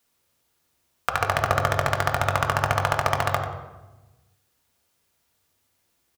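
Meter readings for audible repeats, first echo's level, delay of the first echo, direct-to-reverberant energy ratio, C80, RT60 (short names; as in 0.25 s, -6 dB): 1, -10.5 dB, 92 ms, 1.5 dB, 6.0 dB, 1.1 s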